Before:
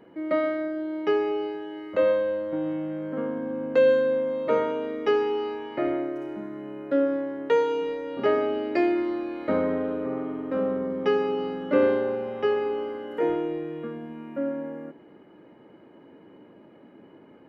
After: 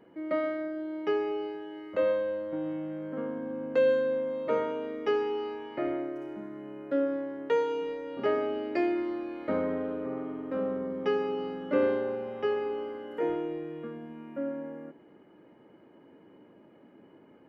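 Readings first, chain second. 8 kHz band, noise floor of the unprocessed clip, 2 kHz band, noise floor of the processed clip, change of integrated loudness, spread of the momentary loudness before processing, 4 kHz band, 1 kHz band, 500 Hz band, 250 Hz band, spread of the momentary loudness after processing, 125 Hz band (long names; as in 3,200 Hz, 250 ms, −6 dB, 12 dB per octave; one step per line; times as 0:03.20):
can't be measured, −52 dBFS, −5.0 dB, −57 dBFS, −5.0 dB, 11 LU, −5.0 dB, −5.0 dB, −5.0 dB, −5.0 dB, 11 LU, −5.0 dB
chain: notch filter 3,900 Hz, Q 25
level −5 dB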